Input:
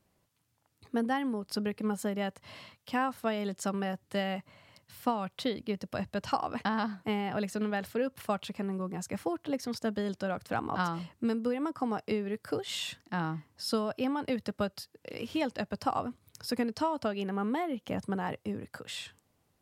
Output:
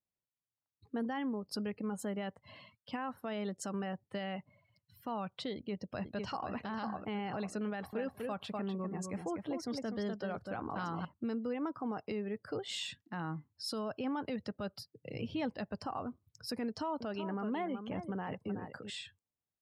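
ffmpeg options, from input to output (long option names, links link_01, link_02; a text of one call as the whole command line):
ffmpeg -i in.wav -filter_complex "[0:a]asplit=2[link_01][link_02];[link_02]afade=type=in:start_time=5.54:duration=0.01,afade=type=out:start_time=6.54:duration=0.01,aecho=0:1:500|1000|1500|2000|2500:0.530884|0.212354|0.0849415|0.0339766|0.0135906[link_03];[link_01][link_03]amix=inputs=2:normalize=0,asettb=1/sr,asplit=3[link_04][link_05][link_06];[link_04]atrim=end=7.684[link_07];[link_05]atrim=start=7.68:end=11.05,asetpts=PTS-STARTPTS,afade=type=in:duration=0.004:curve=qsin,afade=type=out:start_time=3.366:duration=0.004:curve=qsin,aecho=1:1:247:0.473,atrim=end_sample=148617[link_08];[link_06]atrim=start=11.046[link_09];[link_07][link_08]acrossfade=duration=0.004:curve1=hsin:curve2=qsin[link_10];[link_10][link_09]acrossfade=duration=0.004:curve1=qsin:curve2=hsin,asettb=1/sr,asplit=3[link_11][link_12][link_13];[link_11]atrim=end=14.794[link_14];[link_12]atrim=start=14.79:end=15.5,asetpts=PTS-STARTPTS,afade=type=in:duration=0.004:curve=qsin,afade=type=out:start_time=0.706:duration=0.004:curve=qsin,equalizer=frequency=130:width=1.4:gain=14.5[link_15];[link_13]atrim=start=15.496[link_16];[link_14][link_15]acrossfade=duration=0.004:curve1=hsin:curve2=qsin[link_17];[link_17][link_16]acrossfade=duration=0.004:curve1=qsin:curve2=hsin,asettb=1/sr,asplit=3[link_18][link_19][link_20];[link_18]atrim=end=16.634[link_21];[link_19]atrim=start=16.63:end=18.9,asetpts=PTS-STARTPTS,afade=type=in:duration=0.004:curve=qsin,afade=type=out:start_time=2.266:duration=0.004:curve=qsin,aecho=1:1:374:0.316,atrim=end_sample=100107[link_22];[link_20]atrim=start=18.896[link_23];[link_21][link_22]acrossfade=duration=0.004:curve1=hsin:curve2=qsin[link_24];[link_24][link_23]acrossfade=duration=0.004:curve1=qsin:curve2=hsin,afftdn=noise_reduction=23:noise_floor=-50,alimiter=level_in=1.5dB:limit=-24dB:level=0:latency=1:release=19,volume=-1.5dB,volume=-3.5dB" out.wav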